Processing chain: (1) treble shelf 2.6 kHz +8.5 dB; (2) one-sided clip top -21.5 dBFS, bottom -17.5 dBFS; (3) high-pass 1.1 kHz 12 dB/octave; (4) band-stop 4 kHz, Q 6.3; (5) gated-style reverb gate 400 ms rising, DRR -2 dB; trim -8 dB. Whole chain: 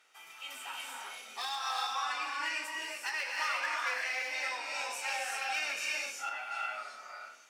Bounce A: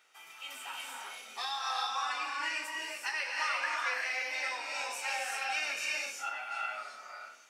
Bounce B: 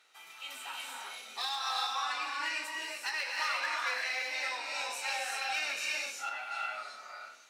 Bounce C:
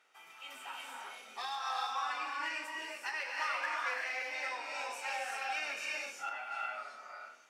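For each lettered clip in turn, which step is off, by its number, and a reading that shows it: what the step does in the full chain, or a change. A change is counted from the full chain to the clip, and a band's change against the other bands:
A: 2, distortion -19 dB; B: 4, 4 kHz band +2.5 dB; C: 1, 8 kHz band -6.5 dB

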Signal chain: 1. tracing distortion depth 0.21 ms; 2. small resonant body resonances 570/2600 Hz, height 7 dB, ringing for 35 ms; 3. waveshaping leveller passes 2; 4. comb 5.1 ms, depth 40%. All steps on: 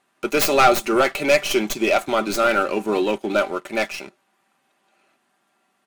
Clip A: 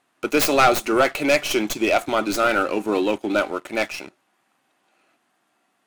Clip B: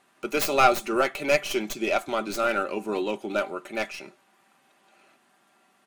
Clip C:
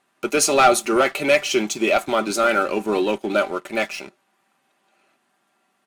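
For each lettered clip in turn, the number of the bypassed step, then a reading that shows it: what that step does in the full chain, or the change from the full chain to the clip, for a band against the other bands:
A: 4, crest factor change -1.5 dB; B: 3, crest factor change +5.5 dB; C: 1, 8 kHz band +5.0 dB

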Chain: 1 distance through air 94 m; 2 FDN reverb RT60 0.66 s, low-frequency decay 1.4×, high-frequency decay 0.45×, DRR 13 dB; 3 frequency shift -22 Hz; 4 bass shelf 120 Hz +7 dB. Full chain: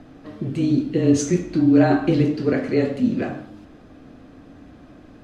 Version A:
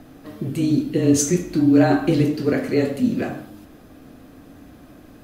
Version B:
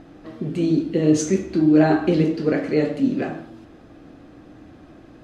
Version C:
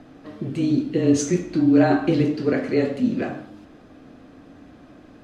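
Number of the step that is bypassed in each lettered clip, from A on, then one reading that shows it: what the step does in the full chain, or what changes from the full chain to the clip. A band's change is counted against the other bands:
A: 1, 8 kHz band +6.5 dB; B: 3, 125 Hz band -2.0 dB; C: 4, 125 Hz band -3.0 dB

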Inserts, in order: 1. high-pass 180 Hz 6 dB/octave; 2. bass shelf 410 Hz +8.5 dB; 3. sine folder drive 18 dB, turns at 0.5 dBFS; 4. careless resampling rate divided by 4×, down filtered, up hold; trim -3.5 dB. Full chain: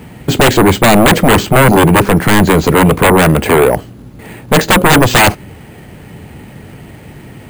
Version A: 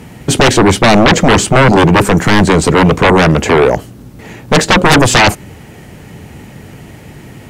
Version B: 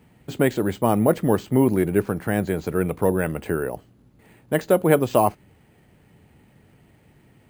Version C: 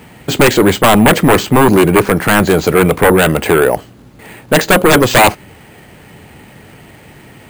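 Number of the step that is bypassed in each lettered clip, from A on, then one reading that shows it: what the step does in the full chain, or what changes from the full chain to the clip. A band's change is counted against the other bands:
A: 4, crest factor change -2.0 dB; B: 3, crest factor change +10.5 dB; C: 2, 125 Hz band -2.5 dB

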